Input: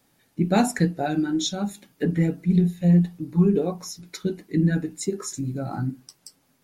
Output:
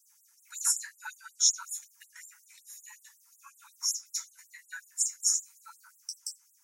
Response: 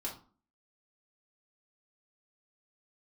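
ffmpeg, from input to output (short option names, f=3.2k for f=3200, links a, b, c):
-filter_complex "[0:a]highshelf=f=4.9k:t=q:w=3:g=8[a];[1:a]atrim=start_sample=2205,asetrate=66150,aresample=44100[b];[a][b]afir=irnorm=-1:irlink=0,afftfilt=real='re*gte(b*sr/1024,830*pow(7300/830,0.5+0.5*sin(2*PI*5.4*pts/sr)))':imag='im*gte(b*sr/1024,830*pow(7300/830,0.5+0.5*sin(2*PI*5.4*pts/sr)))':win_size=1024:overlap=0.75"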